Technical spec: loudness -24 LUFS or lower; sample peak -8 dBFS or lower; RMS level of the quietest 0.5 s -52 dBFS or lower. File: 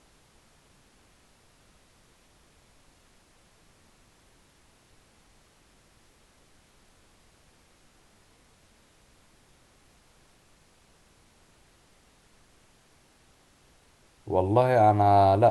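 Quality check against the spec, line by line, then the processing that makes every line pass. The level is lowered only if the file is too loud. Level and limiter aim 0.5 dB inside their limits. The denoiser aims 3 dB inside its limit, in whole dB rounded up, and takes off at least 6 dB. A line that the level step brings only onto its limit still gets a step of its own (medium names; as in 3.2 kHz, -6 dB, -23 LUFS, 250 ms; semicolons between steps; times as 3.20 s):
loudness -21.5 LUFS: fail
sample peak -8.5 dBFS: pass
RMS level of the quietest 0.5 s -61 dBFS: pass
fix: trim -3 dB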